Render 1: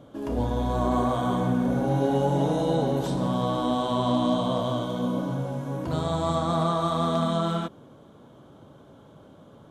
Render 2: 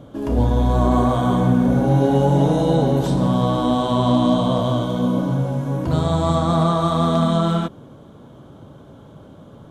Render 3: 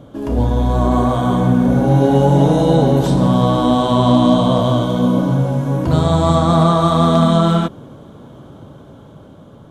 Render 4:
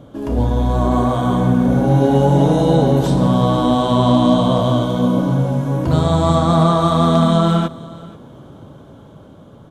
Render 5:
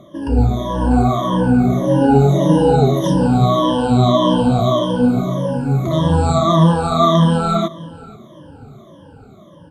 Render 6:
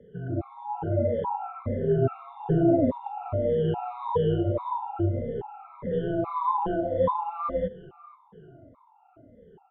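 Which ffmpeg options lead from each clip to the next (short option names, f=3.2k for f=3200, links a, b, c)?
-af "lowshelf=f=180:g=7.5,volume=5dB"
-af "dynaudnorm=f=710:g=5:m=5.5dB,volume=1.5dB"
-af "aecho=1:1:481:0.0944,volume=-1dB"
-af "afftfilt=real='re*pow(10,24/40*sin(2*PI*(1.2*log(max(b,1)*sr/1024/100)/log(2)-(-1.7)*(pts-256)/sr)))':imag='im*pow(10,24/40*sin(2*PI*(1.2*log(max(b,1)*sr/1024/100)/log(2)-(-1.7)*(pts-256)/sr)))':win_size=1024:overlap=0.75,volume=-5dB"
-filter_complex "[0:a]acrossover=split=250 2200:gain=0.0794 1 0.0708[a][b][c];[a][b][c]amix=inputs=3:normalize=0,highpass=f=210:t=q:w=0.5412,highpass=f=210:t=q:w=1.307,lowpass=f=3.3k:t=q:w=0.5176,lowpass=f=3.3k:t=q:w=0.7071,lowpass=f=3.3k:t=q:w=1.932,afreqshift=-150,afftfilt=real='re*gt(sin(2*PI*1.2*pts/sr)*(1-2*mod(floor(b*sr/1024/700),2)),0)':imag='im*gt(sin(2*PI*1.2*pts/sr)*(1-2*mod(floor(b*sr/1024/700),2)),0)':win_size=1024:overlap=0.75,volume=-5.5dB"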